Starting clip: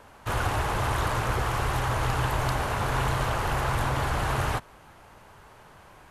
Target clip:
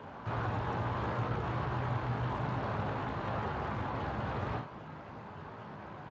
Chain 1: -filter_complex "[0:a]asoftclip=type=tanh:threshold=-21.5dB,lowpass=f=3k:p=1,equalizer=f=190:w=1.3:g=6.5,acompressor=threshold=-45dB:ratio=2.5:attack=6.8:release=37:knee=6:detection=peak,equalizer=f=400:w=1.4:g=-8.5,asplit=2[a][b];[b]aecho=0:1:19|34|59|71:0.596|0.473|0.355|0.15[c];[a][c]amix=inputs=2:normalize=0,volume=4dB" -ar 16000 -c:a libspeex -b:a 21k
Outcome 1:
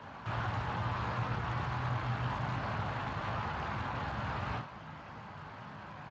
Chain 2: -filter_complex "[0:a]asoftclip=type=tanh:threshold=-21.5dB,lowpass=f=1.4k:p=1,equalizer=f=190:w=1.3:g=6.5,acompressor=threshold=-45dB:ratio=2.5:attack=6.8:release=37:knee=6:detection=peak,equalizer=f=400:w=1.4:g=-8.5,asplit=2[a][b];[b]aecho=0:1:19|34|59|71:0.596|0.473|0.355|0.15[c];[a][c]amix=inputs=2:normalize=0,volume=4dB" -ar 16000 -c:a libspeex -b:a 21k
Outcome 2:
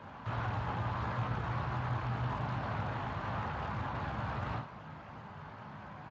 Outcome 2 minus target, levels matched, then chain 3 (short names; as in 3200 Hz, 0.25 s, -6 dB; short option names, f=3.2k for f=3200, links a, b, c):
500 Hz band -4.0 dB
-filter_complex "[0:a]asoftclip=type=tanh:threshold=-21.5dB,lowpass=f=1.4k:p=1,equalizer=f=190:w=1.3:g=6.5,acompressor=threshold=-45dB:ratio=2.5:attack=6.8:release=37:knee=6:detection=peak,asplit=2[a][b];[b]aecho=0:1:19|34|59|71:0.596|0.473|0.355|0.15[c];[a][c]amix=inputs=2:normalize=0,volume=4dB" -ar 16000 -c:a libspeex -b:a 21k